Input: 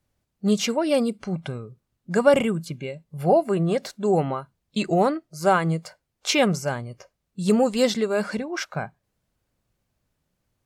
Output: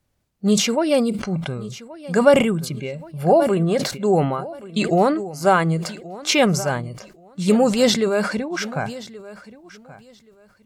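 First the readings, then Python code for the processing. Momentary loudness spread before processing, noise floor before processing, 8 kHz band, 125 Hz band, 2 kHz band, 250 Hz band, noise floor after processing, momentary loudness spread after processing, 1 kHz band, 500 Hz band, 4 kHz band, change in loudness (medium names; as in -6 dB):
13 LU, -78 dBFS, +6.0 dB, +4.0 dB, +4.0 dB, +4.0 dB, -56 dBFS, 15 LU, +3.5 dB, +3.5 dB, +5.0 dB, +3.5 dB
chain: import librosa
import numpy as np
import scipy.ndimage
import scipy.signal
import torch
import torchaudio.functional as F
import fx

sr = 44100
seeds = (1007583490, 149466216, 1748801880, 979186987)

p1 = x + fx.echo_feedback(x, sr, ms=1127, feedback_pct=20, wet_db=-18.5, dry=0)
p2 = fx.sustainer(p1, sr, db_per_s=70.0)
y = p2 * librosa.db_to_amplitude(3.0)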